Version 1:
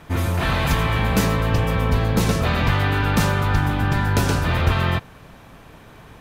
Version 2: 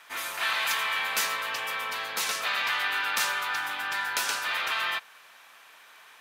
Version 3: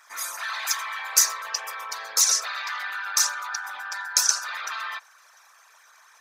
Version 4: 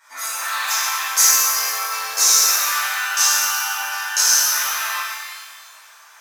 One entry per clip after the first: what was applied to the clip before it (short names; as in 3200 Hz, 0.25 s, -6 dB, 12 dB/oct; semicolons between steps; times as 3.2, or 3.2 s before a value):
HPF 1400 Hz 12 dB/oct
formant sharpening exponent 2; resonant high shelf 4200 Hz +13 dB, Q 3; gain -1 dB
shimmer reverb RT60 1.6 s, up +12 st, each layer -8 dB, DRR -11 dB; gain -4 dB